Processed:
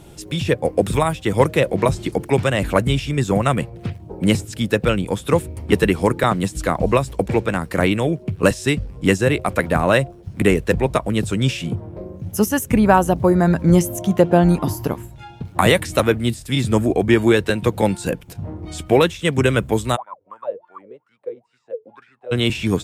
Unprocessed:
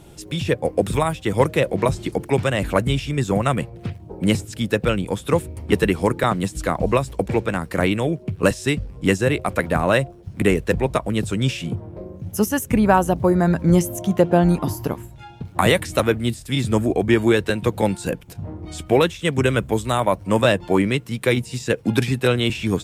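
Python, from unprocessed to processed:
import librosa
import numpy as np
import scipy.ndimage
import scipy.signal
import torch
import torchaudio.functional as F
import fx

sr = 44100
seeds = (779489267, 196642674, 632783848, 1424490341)

y = fx.wah_lfo(x, sr, hz=fx.line((19.95, 3.6), (22.31, 1.6)), low_hz=430.0, high_hz=1500.0, q=21.0, at=(19.95, 22.31), fade=0.02)
y = y * librosa.db_to_amplitude(2.0)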